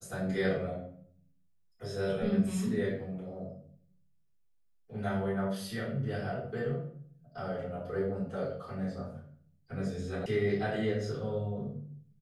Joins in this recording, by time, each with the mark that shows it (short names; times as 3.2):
10.26 sound cut off